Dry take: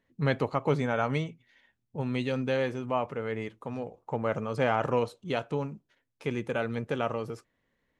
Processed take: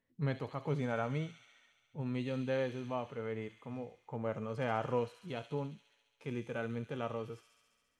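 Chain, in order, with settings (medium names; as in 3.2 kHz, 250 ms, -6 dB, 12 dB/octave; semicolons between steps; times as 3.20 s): harmonic-percussive split percussive -8 dB; feedback echo behind a high-pass 69 ms, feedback 79%, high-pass 4 kHz, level -3.5 dB; trim -5.5 dB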